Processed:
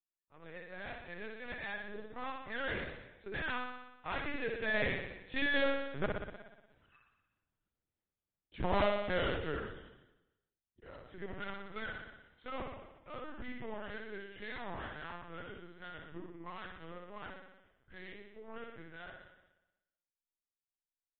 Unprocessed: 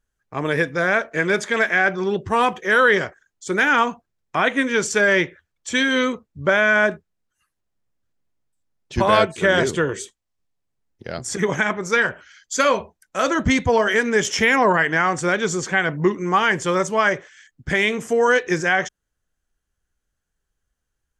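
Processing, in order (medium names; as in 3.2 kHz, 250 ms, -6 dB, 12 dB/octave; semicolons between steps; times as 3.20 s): self-modulated delay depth 0.16 ms; Doppler pass-by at 6.74 s, 23 m/s, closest 1.3 m; level rider gain up to 9 dB; valve stage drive 10 dB, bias 0.55; inverted gate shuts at -25 dBFS, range -40 dB; on a send: flutter echo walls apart 10.4 m, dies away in 1 s; on the sum: LPC vocoder at 8 kHz pitch kept; trim +8.5 dB; MP3 24 kbps 24 kHz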